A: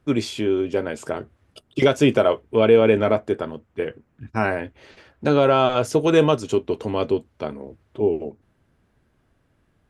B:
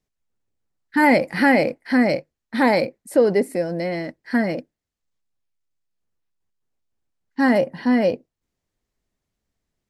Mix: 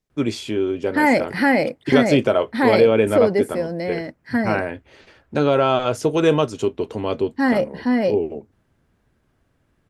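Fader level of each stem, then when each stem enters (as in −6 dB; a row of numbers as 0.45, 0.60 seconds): −0.5, −1.0 decibels; 0.10, 0.00 seconds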